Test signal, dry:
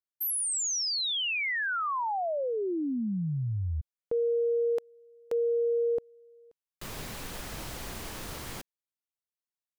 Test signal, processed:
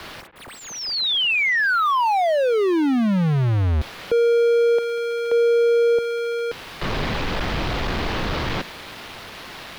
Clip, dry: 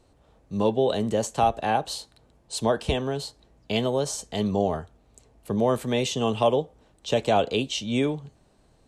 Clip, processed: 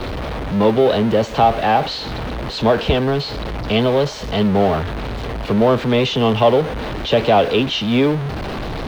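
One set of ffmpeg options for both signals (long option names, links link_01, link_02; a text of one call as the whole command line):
ffmpeg -i in.wav -filter_complex "[0:a]aeval=exprs='val(0)+0.5*0.0562*sgn(val(0))':channel_layout=same,lowpass=frequency=4300:width=0.5412,lowpass=frequency=4300:width=1.3066,highshelf=frequency=3200:gain=-3,acrossover=split=180|510|2400[link_01][link_02][link_03][link_04];[link_04]aeval=exprs='val(0)*gte(abs(val(0)),0.00335)':channel_layout=same[link_05];[link_01][link_02][link_03][link_05]amix=inputs=4:normalize=0,volume=6.5dB" out.wav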